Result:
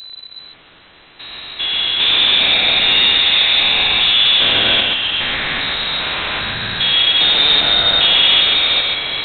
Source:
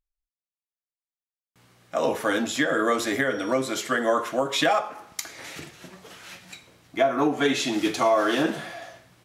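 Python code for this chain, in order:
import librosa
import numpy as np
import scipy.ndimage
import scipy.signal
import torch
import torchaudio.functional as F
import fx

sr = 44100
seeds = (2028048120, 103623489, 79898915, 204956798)

p1 = fx.spec_steps(x, sr, hold_ms=400)
p2 = fx.power_curve(p1, sr, exponent=0.35)
p3 = p2 + fx.echo_single(p2, sr, ms=133, db=-3.5, dry=0)
p4 = fx.freq_invert(p3, sr, carrier_hz=4000)
y = p4 * 10.0 ** (4.5 / 20.0)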